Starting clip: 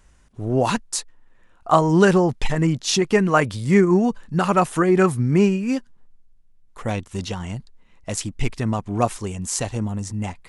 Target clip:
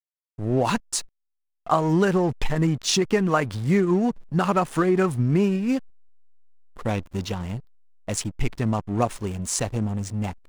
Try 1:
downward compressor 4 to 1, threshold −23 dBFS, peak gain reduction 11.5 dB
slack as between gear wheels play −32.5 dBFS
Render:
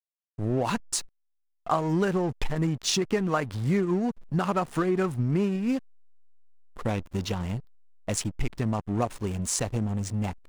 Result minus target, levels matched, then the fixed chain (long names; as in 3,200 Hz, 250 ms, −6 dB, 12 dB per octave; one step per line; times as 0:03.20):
downward compressor: peak gain reduction +5 dB
downward compressor 4 to 1, threshold −16.5 dBFS, peak gain reduction 6.5 dB
slack as between gear wheels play −32.5 dBFS